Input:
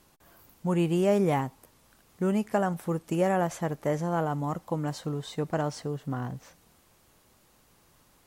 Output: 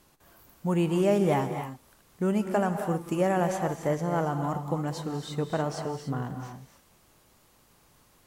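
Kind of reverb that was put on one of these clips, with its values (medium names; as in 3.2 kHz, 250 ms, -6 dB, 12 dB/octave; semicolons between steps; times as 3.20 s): gated-style reverb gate 310 ms rising, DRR 6 dB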